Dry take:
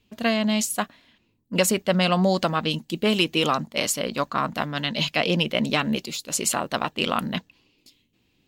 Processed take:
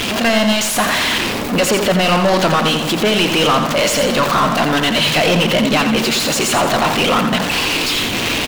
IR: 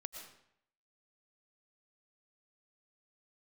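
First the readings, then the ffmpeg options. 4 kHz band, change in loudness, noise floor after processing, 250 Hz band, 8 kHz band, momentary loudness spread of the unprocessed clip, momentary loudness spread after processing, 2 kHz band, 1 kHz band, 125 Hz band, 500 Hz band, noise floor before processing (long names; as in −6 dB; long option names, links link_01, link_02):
+11.0 dB, +9.5 dB, −20 dBFS, +8.5 dB, +8.0 dB, 6 LU, 3 LU, +11.5 dB, +11.0 dB, +8.0 dB, +10.0 dB, −68 dBFS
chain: -filter_complex "[0:a]aeval=exprs='val(0)+0.5*0.0562*sgn(val(0))':channel_layout=same,asplit=2[link_01][link_02];[link_02]highpass=frequency=720:poles=1,volume=27dB,asoftclip=type=tanh:threshold=-7dB[link_03];[link_01][link_03]amix=inputs=2:normalize=0,lowpass=frequency=3300:poles=1,volume=-6dB,aecho=1:1:86|172|258|344|430:0.447|0.205|0.0945|0.0435|0.02"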